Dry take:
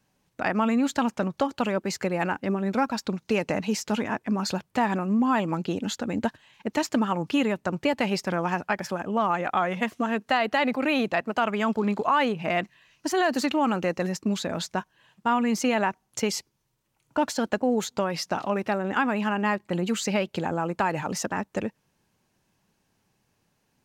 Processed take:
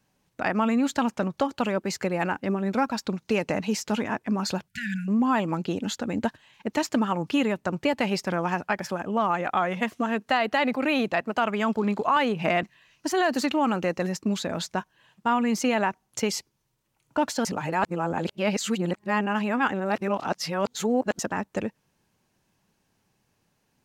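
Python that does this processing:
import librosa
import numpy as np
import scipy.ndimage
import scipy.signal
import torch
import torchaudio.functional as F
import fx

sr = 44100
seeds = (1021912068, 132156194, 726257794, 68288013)

y = fx.brickwall_bandstop(x, sr, low_hz=220.0, high_hz=1400.0, at=(4.68, 5.08))
y = fx.band_squash(y, sr, depth_pct=100, at=(12.16, 12.63))
y = fx.edit(y, sr, fx.reverse_span(start_s=17.45, length_s=3.74), tone=tone)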